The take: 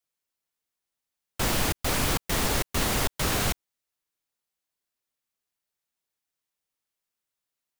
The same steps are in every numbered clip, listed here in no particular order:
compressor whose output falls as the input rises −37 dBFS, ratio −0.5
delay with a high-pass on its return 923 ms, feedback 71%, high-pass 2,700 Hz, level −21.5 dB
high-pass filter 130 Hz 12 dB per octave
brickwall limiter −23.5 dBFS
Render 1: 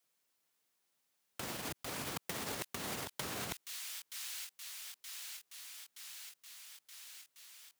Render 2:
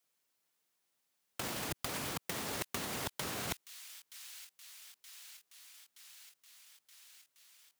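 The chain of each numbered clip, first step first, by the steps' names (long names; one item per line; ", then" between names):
delay with a high-pass on its return, then brickwall limiter, then compressor whose output falls as the input rises, then high-pass filter
high-pass filter, then brickwall limiter, then delay with a high-pass on its return, then compressor whose output falls as the input rises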